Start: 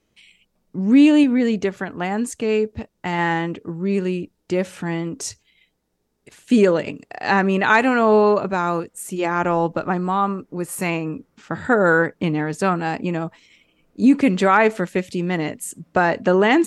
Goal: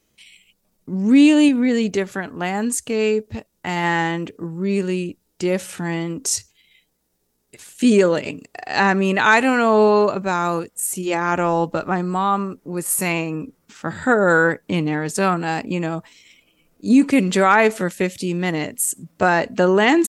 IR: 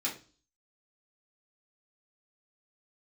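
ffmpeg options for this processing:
-af "crystalizer=i=2:c=0,atempo=0.83"

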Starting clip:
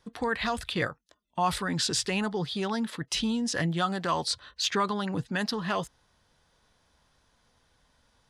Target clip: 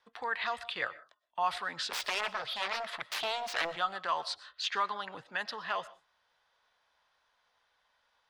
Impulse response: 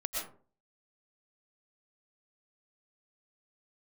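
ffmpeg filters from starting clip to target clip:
-filter_complex "[0:a]asplit=3[s0][s1][s2];[s0]afade=t=out:st=1.9:d=0.02[s3];[s1]aeval=exprs='0.158*(cos(1*acos(clip(val(0)/0.158,-1,1)))-cos(1*PI/2))+0.0708*(cos(7*acos(clip(val(0)/0.158,-1,1)))-cos(7*PI/2))':c=same,afade=t=in:st=1.9:d=0.02,afade=t=out:st=3.75:d=0.02[s4];[s2]afade=t=in:st=3.75:d=0.02[s5];[s3][s4][s5]amix=inputs=3:normalize=0,acrossover=split=580 4300:gain=0.0708 1 0.178[s6][s7][s8];[s6][s7][s8]amix=inputs=3:normalize=0,asplit=2[s9][s10];[1:a]atrim=start_sample=2205,afade=t=out:st=0.24:d=0.01,atrim=end_sample=11025[s11];[s10][s11]afir=irnorm=-1:irlink=0,volume=0.119[s12];[s9][s12]amix=inputs=2:normalize=0,volume=0.708"

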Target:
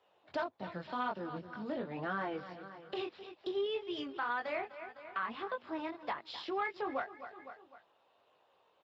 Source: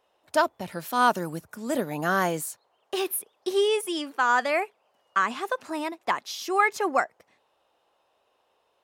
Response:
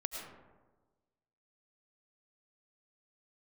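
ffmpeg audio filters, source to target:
-filter_complex "[0:a]aecho=1:1:254|508|762:0.133|0.0507|0.0193,acrossover=split=130|920|3400[s0][s1][s2][s3];[s3]acrusher=bits=3:mode=log:mix=0:aa=0.000001[s4];[s0][s1][s2][s4]amix=inputs=4:normalize=0,flanger=delay=19.5:depth=3:speed=1.8,acontrast=90,asplit=3[s5][s6][s7];[s5]afade=t=out:st=1.5:d=0.02[s8];[s6]bandreject=f=250.4:t=h:w=4,bandreject=f=500.8:t=h:w=4,bandreject=f=751.2:t=h:w=4,bandreject=f=1001.6:t=h:w=4,bandreject=f=1252:t=h:w=4,bandreject=f=1502.4:t=h:w=4,bandreject=f=1752.8:t=h:w=4,bandreject=f=2003.2:t=h:w=4,bandreject=f=2253.6:t=h:w=4,bandreject=f=2504:t=h:w=4,bandreject=f=2754.4:t=h:w=4,bandreject=f=3004.8:t=h:w=4,bandreject=f=3255.2:t=h:w=4,bandreject=f=3505.6:t=h:w=4,afade=t=in:st=1.5:d=0.02,afade=t=out:st=2.97:d=0.02[s9];[s7]afade=t=in:st=2.97:d=0.02[s10];[s8][s9][s10]amix=inputs=3:normalize=0,asoftclip=type=tanh:threshold=0.501,aresample=11025,aresample=44100,acompressor=threshold=0.0112:ratio=2,asettb=1/sr,asplit=3[s11][s12][s13];[s11]atrim=end=3.664[s14];[s12]atrim=start=3.66:end=4.46,asetpts=PTS-STARTPTS,afade=t=in:d=0.004:c=qsin,afade=t=out:st=0.796:d=0.004:c=qsin,highpass=f=58:w=0.5412,highpass=f=58:w=1.3066[s15];[s13]atrim=start=4.456[s16];[s14][s15]acrossfade=d=0.004:c1=hsin:c2=qsin[s17];[s17][s16]acrossfade=d=0.004:c1=qsin:c2=hsin,volume=0.562" -ar 16000 -c:a libspeex -b:a 17k

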